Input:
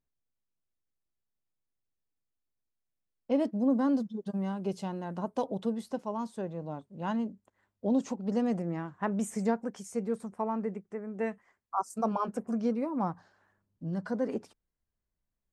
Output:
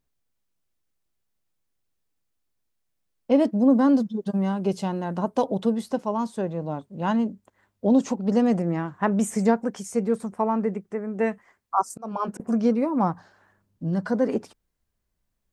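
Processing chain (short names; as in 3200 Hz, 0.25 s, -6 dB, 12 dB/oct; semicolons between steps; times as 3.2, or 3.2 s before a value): 11.9–12.4 auto swell 0.405 s; gain +8.5 dB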